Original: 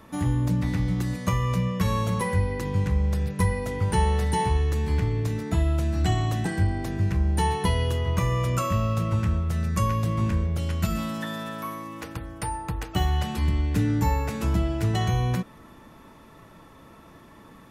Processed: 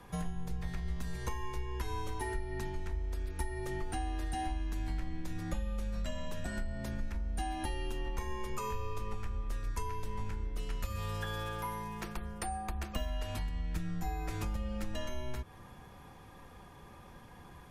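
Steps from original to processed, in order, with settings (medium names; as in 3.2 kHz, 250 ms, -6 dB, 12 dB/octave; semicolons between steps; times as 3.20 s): compression, threshold -29 dBFS, peak gain reduction 11.5 dB; frequency shift -120 Hz; trim -3.5 dB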